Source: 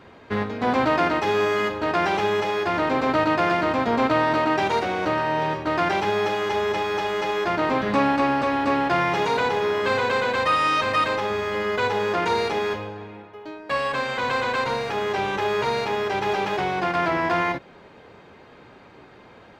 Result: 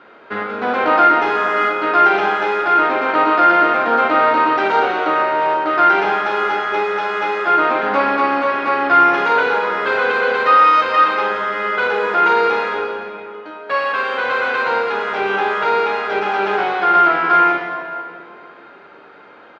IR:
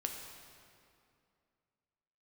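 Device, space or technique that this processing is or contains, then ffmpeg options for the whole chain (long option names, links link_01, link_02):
station announcement: -filter_complex "[0:a]highpass=310,lowpass=3700,equalizer=frequency=1400:width_type=o:width=0.24:gain=11,aecho=1:1:40.82|169.1:0.282|0.251[link_01];[1:a]atrim=start_sample=2205[link_02];[link_01][link_02]afir=irnorm=-1:irlink=0,volume=3.5dB"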